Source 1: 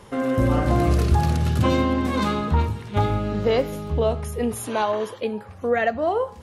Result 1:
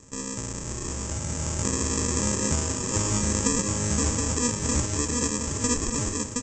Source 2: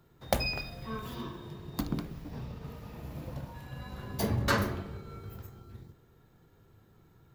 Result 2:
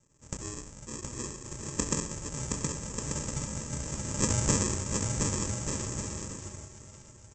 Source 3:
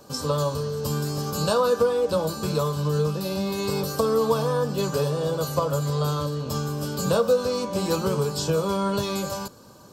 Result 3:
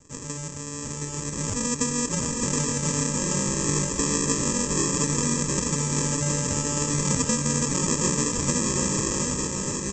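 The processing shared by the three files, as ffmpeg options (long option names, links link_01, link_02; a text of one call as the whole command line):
ffmpeg -i in.wav -af "acompressor=threshold=-28dB:ratio=4,aresample=16000,acrusher=samples=22:mix=1:aa=0.000001,aresample=44100,aexciter=amount=15.2:drive=3.7:freq=6100,dynaudnorm=framelen=930:gausssize=3:maxgain=11dB,aecho=1:1:720|1188|1492|1690|1818:0.631|0.398|0.251|0.158|0.1,volume=-6.5dB" out.wav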